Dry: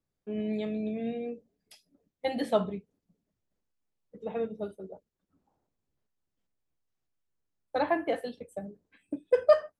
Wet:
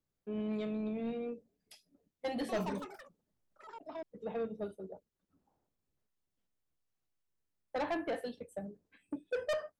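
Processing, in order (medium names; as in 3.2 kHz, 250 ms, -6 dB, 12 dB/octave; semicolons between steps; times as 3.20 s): saturation -27.5 dBFS, distortion -5 dB; 2.28–4.46 s: ever faster or slower copies 208 ms, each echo +6 st, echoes 3, each echo -6 dB; trim -2.5 dB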